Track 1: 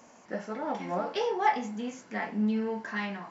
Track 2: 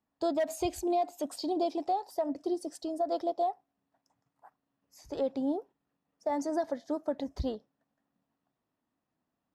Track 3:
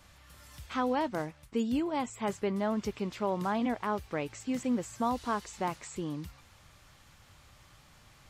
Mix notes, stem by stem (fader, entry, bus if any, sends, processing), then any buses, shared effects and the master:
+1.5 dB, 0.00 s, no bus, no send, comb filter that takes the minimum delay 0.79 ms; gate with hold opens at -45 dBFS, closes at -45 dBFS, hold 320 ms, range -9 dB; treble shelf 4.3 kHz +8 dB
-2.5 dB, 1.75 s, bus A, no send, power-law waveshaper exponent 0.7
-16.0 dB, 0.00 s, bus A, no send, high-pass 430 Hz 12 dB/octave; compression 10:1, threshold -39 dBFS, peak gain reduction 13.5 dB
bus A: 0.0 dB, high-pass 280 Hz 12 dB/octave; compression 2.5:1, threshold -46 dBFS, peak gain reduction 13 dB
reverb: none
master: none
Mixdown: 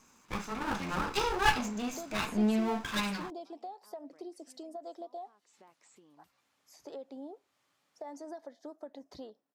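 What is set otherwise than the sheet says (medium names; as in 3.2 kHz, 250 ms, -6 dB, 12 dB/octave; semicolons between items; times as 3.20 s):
stem 2: missing power-law waveshaper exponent 0.7; stem 3: missing high-pass 430 Hz 12 dB/octave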